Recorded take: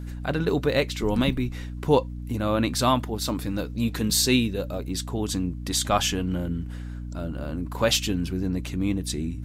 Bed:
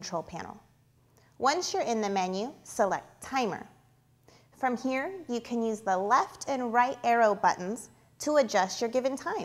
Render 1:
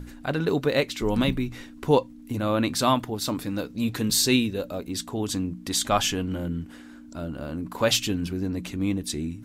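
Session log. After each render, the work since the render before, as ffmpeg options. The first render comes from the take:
-af "bandreject=f=60:t=h:w=6,bandreject=f=120:t=h:w=6,bandreject=f=180:t=h:w=6"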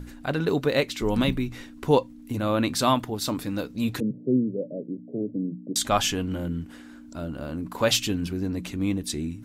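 -filter_complex "[0:a]asettb=1/sr,asplit=3[s0][s1][s2];[s0]atrim=end=4.004[s3];[s1]atrim=start=4:end=5.76,asetpts=PTS-STARTPTS,afade=t=in:d=0.004:c=qsin,afade=t=out:st=1.756:d=0.004:c=qsin,asuperpass=centerf=270:order=20:qfactor=0.54[s4];[s2]atrim=start=5.756[s5];[s3][s4]acrossfade=d=0.004:c1=hsin:c2=qsin[s6];[s6][s5]acrossfade=d=0.004:c1=qsin:c2=hsin"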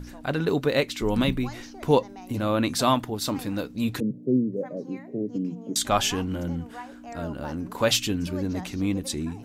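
-filter_complex "[1:a]volume=0.158[s0];[0:a][s0]amix=inputs=2:normalize=0"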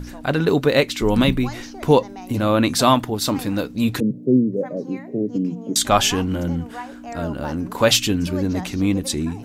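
-af "volume=2.11,alimiter=limit=0.708:level=0:latency=1"

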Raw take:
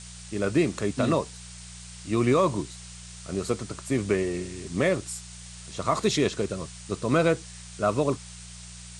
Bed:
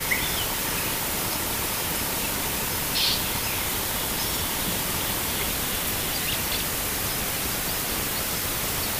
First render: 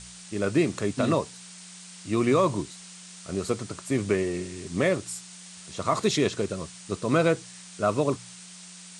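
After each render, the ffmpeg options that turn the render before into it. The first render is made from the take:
-af "bandreject=f=60:t=h:w=4,bandreject=f=120:t=h:w=4"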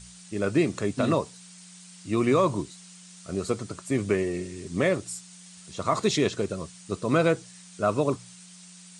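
-af "afftdn=nr=6:nf=-46"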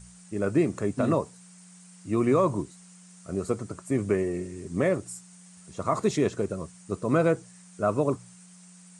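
-af "equalizer=f=3800:t=o:w=1.5:g=-12"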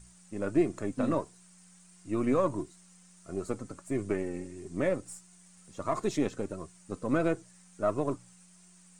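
-af "aeval=exprs='if(lt(val(0),0),0.708*val(0),val(0))':c=same,flanger=delay=2.8:depth=1.1:regen=47:speed=1.5:shape=sinusoidal"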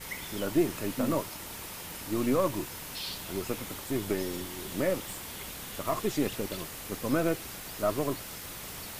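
-filter_complex "[1:a]volume=0.188[s0];[0:a][s0]amix=inputs=2:normalize=0"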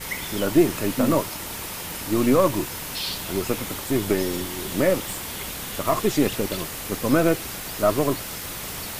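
-af "volume=2.66"

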